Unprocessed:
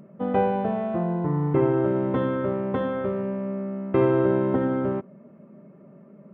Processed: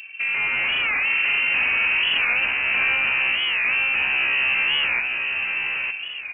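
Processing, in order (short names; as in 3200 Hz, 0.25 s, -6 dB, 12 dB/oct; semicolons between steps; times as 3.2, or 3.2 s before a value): notches 50/100/150/200 Hz; in parallel at 0 dB: compressor, threshold -35 dBFS, peak gain reduction 18 dB; on the sum: limiter -17 dBFS, peak gain reduction 9 dB; AGC gain up to 6.5 dB; hard clip -24 dBFS, distortion -6 dB; on a send: feedback echo 0.905 s, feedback 24%, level -4 dB; on the sum: inverted band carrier 2900 Hz; record warp 45 rpm, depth 160 cents; gain +3 dB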